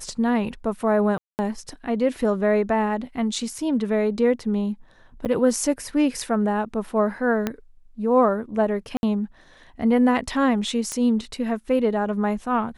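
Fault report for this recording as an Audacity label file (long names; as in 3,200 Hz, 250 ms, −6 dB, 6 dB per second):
1.180000	1.390000	drop-out 209 ms
3.580000	3.580000	drop-out 3 ms
5.250000	5.260000	drop-out 8.4 ms
7.470000	7.470000	click −10 dBFS
8.970000	9.030000	drop-out 61 ms
10.920000	10.920000	click −14 dBFS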